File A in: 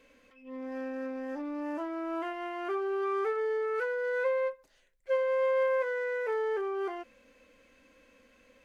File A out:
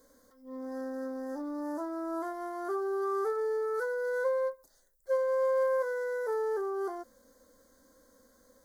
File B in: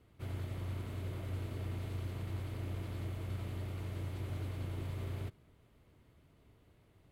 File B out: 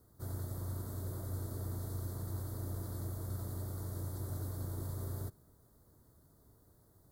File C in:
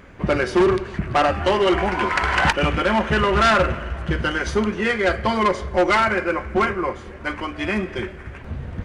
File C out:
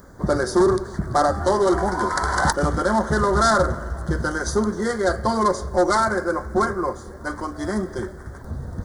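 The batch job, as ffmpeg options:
ffmpeg -i in.wav -af "asuperstop=centerf=2600:order=4:qfactor=0.88,aemphasis=mode=production:type=50fm" out.wav

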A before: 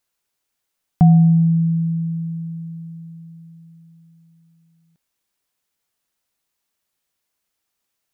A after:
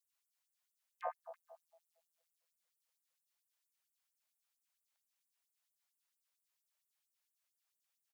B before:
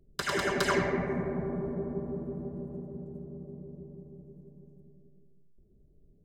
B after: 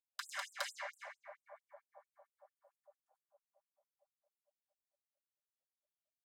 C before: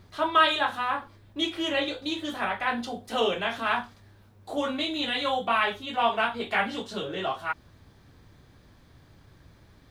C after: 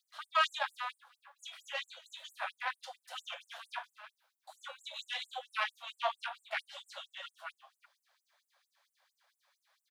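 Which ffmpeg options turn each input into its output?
ffmpeg -i in.wav -af "aeval=exprs='(tanh(4.47*val(0)+0.8)-tanh(0.8))/4.47':channel_layout=same,aecho=1:1:330:0.133,afftfilt=real='re*gte(b*sr/1024,500*pow(7500/500,0.5+0.5*sin(2*PI*4.4*pts/sr)))':imag='im*gte(b*sr/1024,500*pow(7500/500,0.5+0.5*sin(2*PI*4.4*pts/sr)))':win_size=1024:overlap=0.75,volume=-4dB" out.wav

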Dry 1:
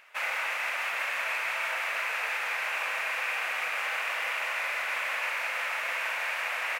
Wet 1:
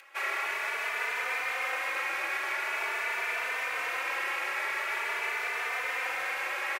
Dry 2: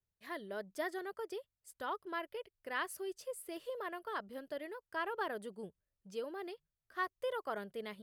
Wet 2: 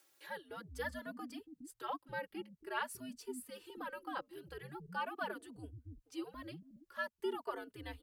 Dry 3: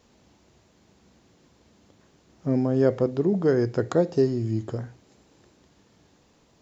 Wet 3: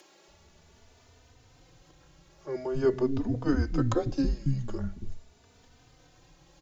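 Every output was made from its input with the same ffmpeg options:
ffmpeg -i in.wav -filter_complex "[0:a]afreqshift=-130,equalizer=frequency=220:width=6.6:gain=-8.5,acrossover=split=240[link_01][link_02];[link_01]adelay=280[link_03];[link_03][link_02]amix=inputs=2:normalize=0,acompressor=mode=upward:threshold=-50dB:ratio=2.5,asplit=2[link_04][link_05];[link_05]adelay=3.2,afreqshift=0.45[link_06];[link_04][link_06]amix=inputs=2:normalize=1,volume=2dB" out.wav

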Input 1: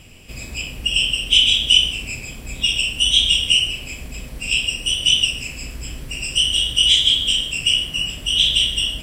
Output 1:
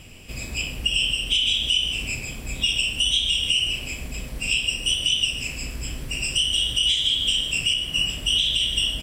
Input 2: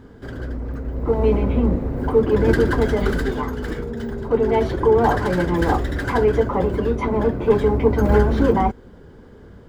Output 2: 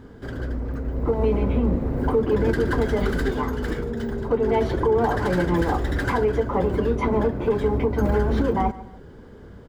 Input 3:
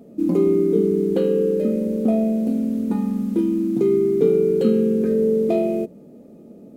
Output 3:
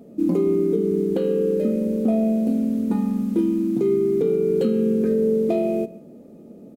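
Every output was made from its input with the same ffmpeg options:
ffmpeg -i in.wav -af "aecho=1:1:144|288:0.1|0.028,alimiter=limit=-11.5dB:level=0:latency=1:release=236" out.wav

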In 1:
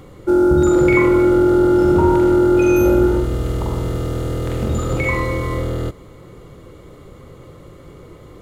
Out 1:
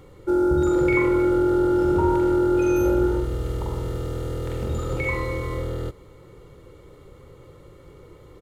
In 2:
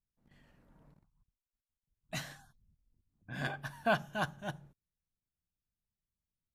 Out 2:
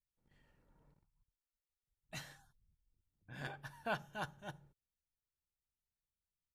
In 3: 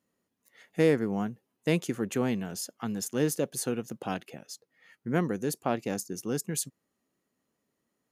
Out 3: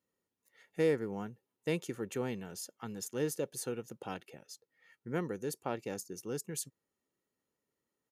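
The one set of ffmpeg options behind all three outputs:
ffmpeg -i in.wav -af "aecho=1:1:2.2:0.35,volume=-7.5dB" out.wav

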